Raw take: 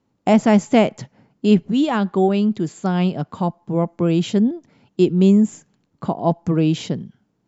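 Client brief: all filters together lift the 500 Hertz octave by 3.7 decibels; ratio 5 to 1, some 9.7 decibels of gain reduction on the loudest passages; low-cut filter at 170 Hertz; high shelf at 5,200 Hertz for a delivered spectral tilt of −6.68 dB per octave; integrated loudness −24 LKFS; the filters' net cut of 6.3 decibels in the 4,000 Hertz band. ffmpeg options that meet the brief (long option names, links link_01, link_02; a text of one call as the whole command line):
ffmpeg -i in.wav -af "highpass=170,equalizer=frequency=500:width_type=o:gain=5.5,equalizer=frequency=4000:width_type=o:gain=-6,highshelf=frequency=5200:gain=-8.5,acompressor=threshold=-18dB:ratio=5,volume=0.5dB" out.wav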